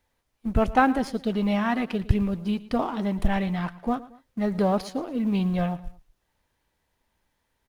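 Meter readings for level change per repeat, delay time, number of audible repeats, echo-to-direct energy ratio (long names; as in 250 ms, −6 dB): −7.0 dB, 113 ms, 2, −17.5 dB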